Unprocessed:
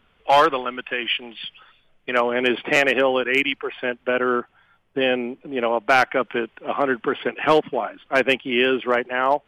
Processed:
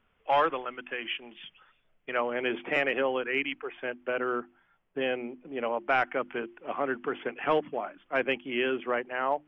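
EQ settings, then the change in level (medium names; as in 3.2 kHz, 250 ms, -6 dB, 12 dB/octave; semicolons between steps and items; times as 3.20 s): Savitzky-Golay filter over 25 samples; hum notches 50/100/150/200/250/300/350 Hz; -9.0 dB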